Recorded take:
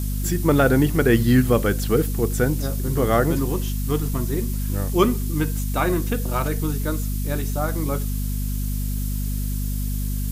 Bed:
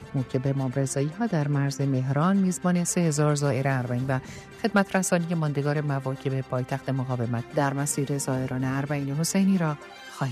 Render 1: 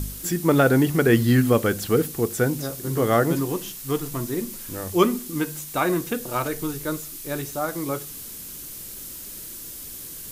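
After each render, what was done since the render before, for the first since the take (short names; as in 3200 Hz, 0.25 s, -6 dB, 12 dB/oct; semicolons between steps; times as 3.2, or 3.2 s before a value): de-hum 50 Hz, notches 5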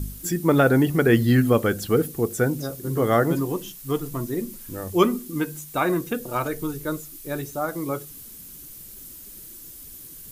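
denoiser 8 dB, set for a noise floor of -38 dBFS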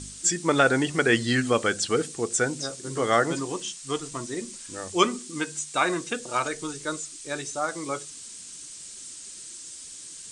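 steep low-pass 8800 Hz 72 dB/oct; tilt +3.5 dB/oct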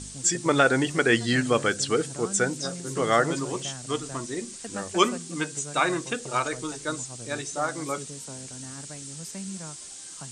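add bed -15.5 dB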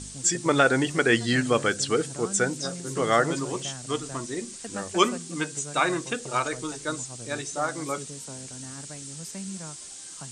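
nothing audible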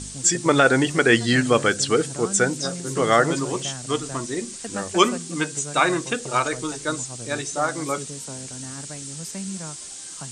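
gain +4.5 dB; limiter -3 dBFS, peak gain reduction 2 dB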